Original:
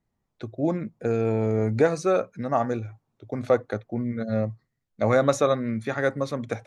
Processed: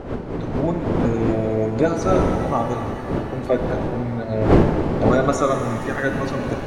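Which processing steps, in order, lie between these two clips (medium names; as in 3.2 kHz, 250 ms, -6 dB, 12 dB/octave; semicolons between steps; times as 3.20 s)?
coarse spectral quantiser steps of 30 dB; wind noise 400 Hz -26 dBFS; pitch-shifted reverb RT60 2.9 s, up +7 st, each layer -8 dB, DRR 5 dB; trim +1.5 dB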